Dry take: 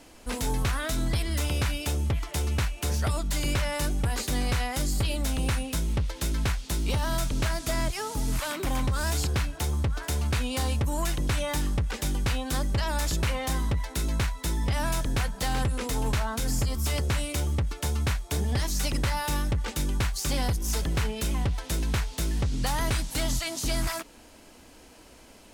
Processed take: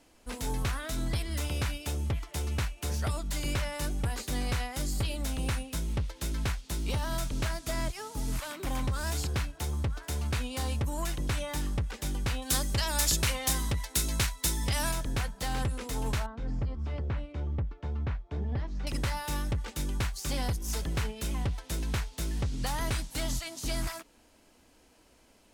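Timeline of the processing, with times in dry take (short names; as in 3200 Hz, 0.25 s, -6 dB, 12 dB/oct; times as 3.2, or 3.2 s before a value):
12.42–14.92 high shelf 2900 Hz +11.5 dB
16.26–18.87 tape spacing loss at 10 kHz 41 dB
whole clip: upward expander 1.5:1, over -37 dBFS; gain -2.5 dB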